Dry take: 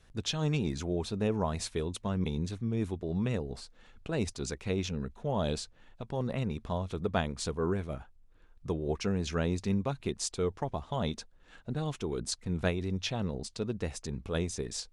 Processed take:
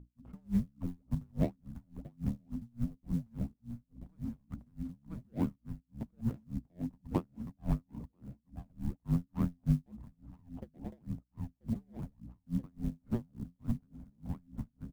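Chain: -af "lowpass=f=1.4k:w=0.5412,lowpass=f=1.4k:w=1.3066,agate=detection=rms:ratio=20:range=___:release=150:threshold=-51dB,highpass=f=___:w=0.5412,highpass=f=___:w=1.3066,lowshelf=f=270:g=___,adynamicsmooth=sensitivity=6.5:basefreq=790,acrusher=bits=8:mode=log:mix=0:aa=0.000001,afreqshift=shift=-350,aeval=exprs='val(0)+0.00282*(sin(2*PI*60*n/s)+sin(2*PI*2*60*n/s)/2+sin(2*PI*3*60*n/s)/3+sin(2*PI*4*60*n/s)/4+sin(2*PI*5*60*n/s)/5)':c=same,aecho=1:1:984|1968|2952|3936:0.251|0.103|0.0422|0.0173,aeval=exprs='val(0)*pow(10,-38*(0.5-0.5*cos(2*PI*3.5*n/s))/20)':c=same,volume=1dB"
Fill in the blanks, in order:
-8dB, 93, 93, 4.5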